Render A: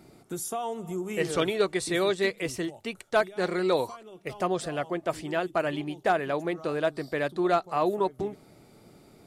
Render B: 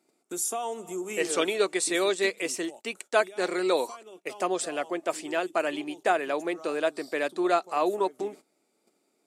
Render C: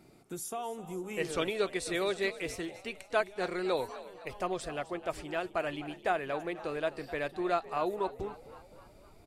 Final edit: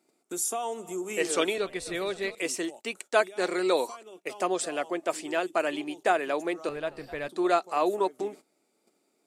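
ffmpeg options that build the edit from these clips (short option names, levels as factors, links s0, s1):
-filter_complex "[2:a]asplit=2[s0][s1];[1:a]asplit=3[s2][s3][s4];[s2]atrim=end=1.582[s5];[s0]atrim=start=1.578:end=2.352[s6];[s3]atrim=start=2.348:end=6.692[s7];[s1]atrim=start=6.688:end=7.282[s8];[s4]atrim=start=7.278[s9];[s5][s6]acrossfade=d=0.004:c1=hsin:c2=hsin[s10];[s10][s7]acrossfade=d=0.004:c1=hsin:c2=hsin[s11];[s11][s8]acrossfade=d=0.004:c1=hsin:c2=hsin[s12];[s12][s9]acrossfade=d=0.004:c1=hsin:c2=hsin"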